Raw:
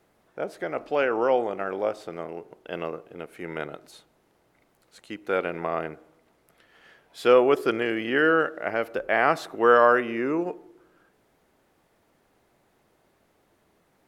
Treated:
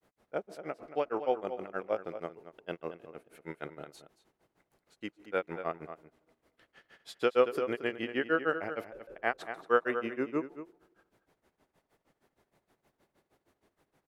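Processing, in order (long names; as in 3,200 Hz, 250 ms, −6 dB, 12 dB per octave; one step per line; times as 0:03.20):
granular cloud 121 ms, grains 6.4 per second, pitch spread up and down by 0 semitones
slap from a distant wall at 39 metres, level −12 dB
in parallel at −3 dB: brickwall limiter −19 dBFS, peak gain reduction 13 dB
on the sum: level −7 dB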